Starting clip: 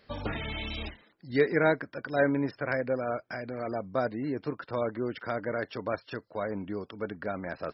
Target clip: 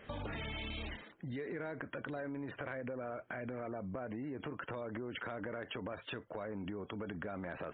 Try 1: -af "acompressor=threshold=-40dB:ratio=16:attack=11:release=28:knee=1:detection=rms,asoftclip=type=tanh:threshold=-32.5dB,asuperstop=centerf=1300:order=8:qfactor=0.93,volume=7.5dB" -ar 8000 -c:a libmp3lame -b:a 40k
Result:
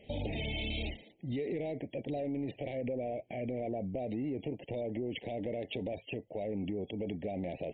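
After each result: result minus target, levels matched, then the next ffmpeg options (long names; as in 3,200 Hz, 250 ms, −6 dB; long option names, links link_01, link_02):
downward compressor: peak gain reduction −7 dB; 1,000 Hz band −4.5 dB
-af "acompressor=threshold=-47.5dB:ratio=16:attack=11:release=28:knee=1:detection=rms,asoftclip=type=tanh:threshold=-32.5dB,asuperstop=centerf=1300:order=8:qfactor=0.93,volume=7.5dB" -ar 8000 -c:a libmp3lame -b:a 40k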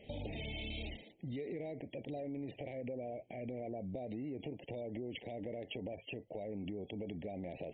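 1,000 Hz band −5.0 dB
-af "acompressor=threshold=-47.5dB:ratio=16:attack=11:release=28:knee=1:detection=rms,asoftclip=type=tanh:threshold=-32.5dB,volume=7.5dB" -ar 8000 -c:a libmp3lame -b:a 40k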